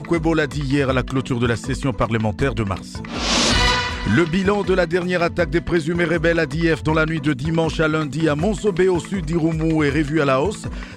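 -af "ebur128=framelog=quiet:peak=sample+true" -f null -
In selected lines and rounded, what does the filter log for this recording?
Integrated loudness:
  I:         -19.5 LUFS
  Threshold: -29.5 LUFS
Loudness range:
  LRA:         1.5 LU
  Threshold: -39.4 LUFS
  LRA low:   -20.1 LUFS
  LRA high:  -18.6 LUFS
Sample peak:
  Peak:       -3.5 dBFS
True peak:
  Peak:       -3.4 dBFS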